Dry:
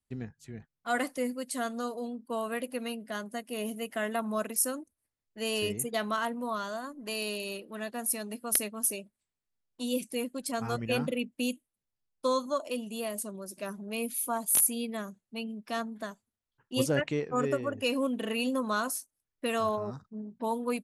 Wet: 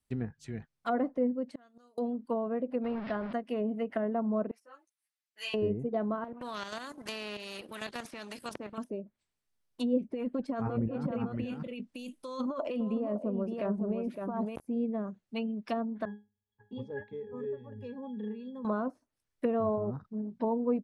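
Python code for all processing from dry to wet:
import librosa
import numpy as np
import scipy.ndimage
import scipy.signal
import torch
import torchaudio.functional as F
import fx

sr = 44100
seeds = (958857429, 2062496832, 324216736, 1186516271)

y = fx.chain(x, sr, fx.resample_bad(factor=2, down='none', up='filtered'),
    fx.gate_flip(shuts_db=-31.0, range_db=-32), at=(1.55, 1.98))
y = fx.chain(y, sr, fx.delta_mod(bps=64000, step_db=-36.0),
    fx.high_shelf(hz=8200.0, db=-10.0),
    fx.resample_bad(factor=4, down='none', up='filtered'), at=(2.84, 3.33))
y = fx.chain(y, sr, fx.highpass(hz=1500.0, slope=12),
    fx.high_shelf(hz=8200.0, db=-3.5),
    fx.ensemble(), at=(4.51, 5.54))
y = fx.chain(y, sr, fx.highpass(hz=120.0, slope=12),
    fx.level_steps(step_db=9),
    fx.spectral_comp(ratio=2.0), at=(6.24, 8.78))
y = fx.chain(y, sr, fx.over_compress(threshold_db=-37.0, ratio=-1.0),
    fx.echo_single(ms=561, db=-5.5), at=(10.04, 14.56))
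y = fx.chain(y, sr, fx.octave_resonator(note='G#', decay_s=0.22),
    fx.band_squash(depth_pct=70), at=(16.05, 18.65))
y = fx.notch(y, sr, hz=7000.0, q=19.0)
y = fx.env_lowpass_down(y, sr, base_hz=590.0, full_db=-30.5)
y = F.gain(torch.from_numpy(y), 4.0).numpy()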